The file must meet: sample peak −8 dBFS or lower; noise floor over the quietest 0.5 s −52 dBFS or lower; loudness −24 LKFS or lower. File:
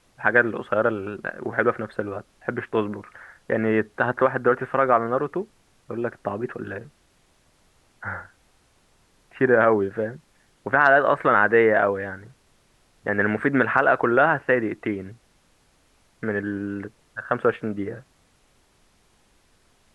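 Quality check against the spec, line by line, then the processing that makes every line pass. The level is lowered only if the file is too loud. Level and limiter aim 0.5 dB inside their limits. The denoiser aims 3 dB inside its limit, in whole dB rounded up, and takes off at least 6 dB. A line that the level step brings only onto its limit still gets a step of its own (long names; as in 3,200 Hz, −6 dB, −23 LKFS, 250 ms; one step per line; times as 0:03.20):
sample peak −3.0 dBFS: out of spec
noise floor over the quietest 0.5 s −62 dBFS: in spec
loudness −22.5 LKFS: out of spec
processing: level −2 dB
brickwall limiter −8.5 dBFS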